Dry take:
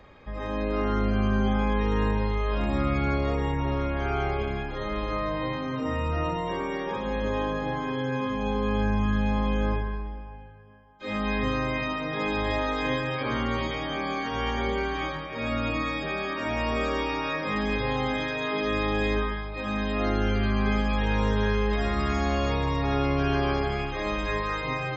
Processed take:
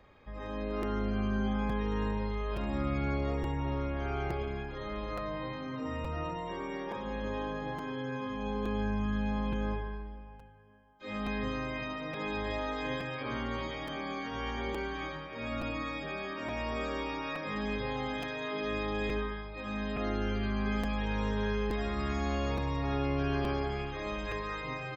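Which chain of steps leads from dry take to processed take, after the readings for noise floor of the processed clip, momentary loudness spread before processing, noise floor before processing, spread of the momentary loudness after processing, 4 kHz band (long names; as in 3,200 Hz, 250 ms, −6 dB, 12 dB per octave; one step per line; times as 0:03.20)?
−44 dBFS, 5 LU, −36 dBFS, 6 LU, −8.0 dB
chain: repeating echo 72 ms, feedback 33%, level −13 dB
regular buffer underruns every 0.87 s, samples 256, repeat, from 0:00.82
level −8 dB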